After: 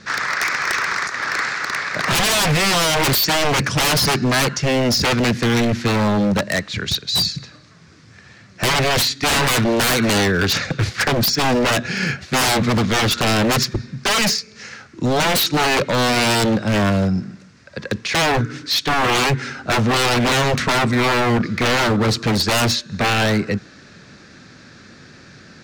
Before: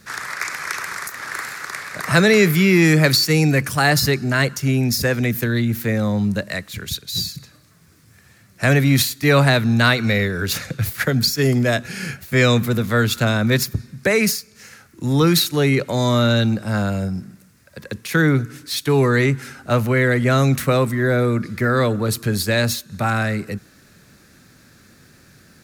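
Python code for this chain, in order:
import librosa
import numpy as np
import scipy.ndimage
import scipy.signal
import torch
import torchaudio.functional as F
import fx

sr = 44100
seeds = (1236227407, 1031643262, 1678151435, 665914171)

y = scipy.signal.sosfilt(scipy.signal.butter(4, 5900.0, 'lowpass', fs=sr, output='sos'), x)
y = fx.low_shelf(y, sr, hz=82.0, db=-9.5)
y = 10.0 ** (-20.0 / 20.0) * (np.abs((y / 10.0 ** (-20.0 / 20.0) + 3.0) % 4.0 - 2.0) - 1.0)
y = y * 10.0 ** (8.0 / 20.0)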